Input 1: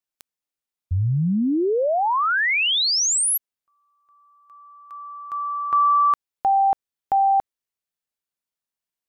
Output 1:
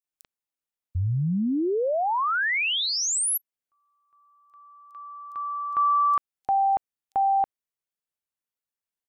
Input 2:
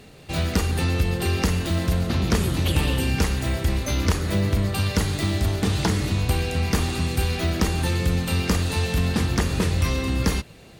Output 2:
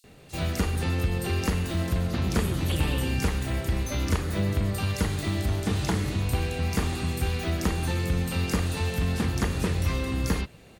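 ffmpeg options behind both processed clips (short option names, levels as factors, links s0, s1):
-filter_complex "[0:a]acrossover=split=4700[s0][s1];[s0]adelay=40[s2];[s2][s1]amix=inputs=2:normalize=0,volume=0.631"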